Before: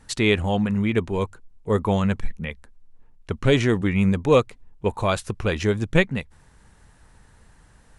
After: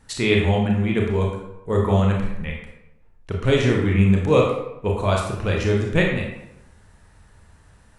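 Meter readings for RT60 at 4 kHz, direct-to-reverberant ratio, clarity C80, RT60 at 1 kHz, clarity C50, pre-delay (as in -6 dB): 0.55 s, -1.5 dB, 6.0 dB, 0.85 s, 2.5 dB, 25 ms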